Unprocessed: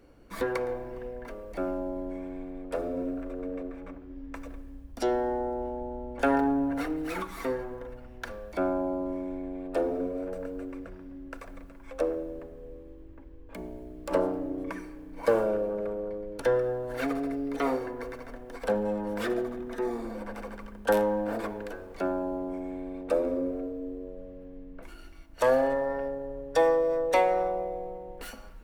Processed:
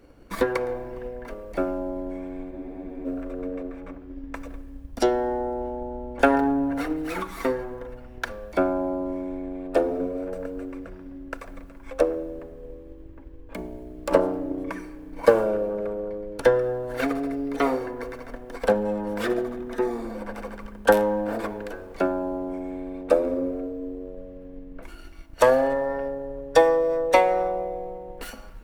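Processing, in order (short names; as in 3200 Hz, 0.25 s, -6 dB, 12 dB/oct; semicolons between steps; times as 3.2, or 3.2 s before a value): transient shaper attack +6 dB, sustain +1 dB; spectral freeze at 2.54, 0.52 s; gain +3 dB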